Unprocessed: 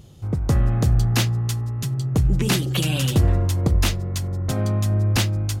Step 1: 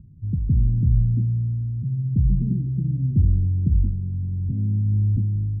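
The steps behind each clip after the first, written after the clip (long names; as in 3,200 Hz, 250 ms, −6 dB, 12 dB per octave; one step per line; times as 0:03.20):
inverse Chebyshev low-pass filter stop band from 800 Hz, stop band 60 dB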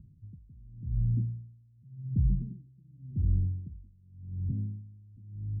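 tremolo with a sine in dB 0.89 Hz, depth 28 dB
level −6.5 dB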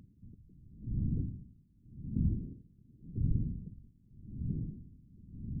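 random phases in short frames
level −5 dB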